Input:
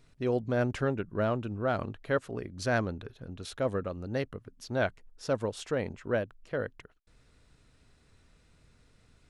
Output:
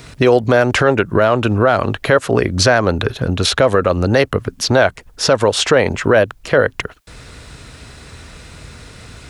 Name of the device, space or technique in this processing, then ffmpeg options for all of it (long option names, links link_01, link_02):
mastering chain: -filter_complex "[0:a]highpass=50,equalizer=frequency=220:width_type=o:width=2.4:gain=-4,acrossover=split=380|1300|6900[link_01][link_02][link_03][link_04];[link_01]acompressor=threshold=-43dB:ratio=4[link_05];[link_02]acompressor=threshold=-31dB:ratio=4[link_06];[link_03]acompressor=threshold=-40dB:ratio=4[link_07];[link_04]acompressor=threshold=-60dB:ratio=4[link_08];[link_05][link_06][link_07][link_08]amix=inputs=4:normalize=0,acompressor=threshold=-40dB:ratio=1.5,alimiter=level_in=30dB:limit=-1dB:release=50:level=0:latency=1,volume=-1dB"